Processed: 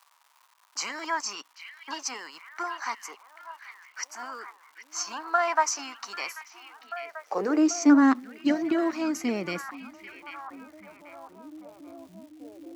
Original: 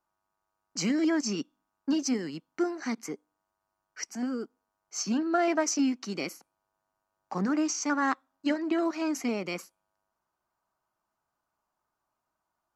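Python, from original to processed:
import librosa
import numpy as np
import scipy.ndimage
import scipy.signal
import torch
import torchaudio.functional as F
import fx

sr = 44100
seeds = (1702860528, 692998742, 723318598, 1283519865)

y = fx.dmg_crackle(x, sr, seeds[0], per_s=350.0, level_db=-49.0)
y = fx.echo_stepped(y, sr, ms=789, hz=2500.0, octaves=-0.7, feedback_pct=70, wet_db=-6.5)
y = fx.filter_sweep_highpass(y, sr, from_hz=1000.0, to_hz=83.0, start_s=6.57, end_s=9.23, q=4.5)
y = F.gain(torch.from_numpy(y), 1.0).numpy()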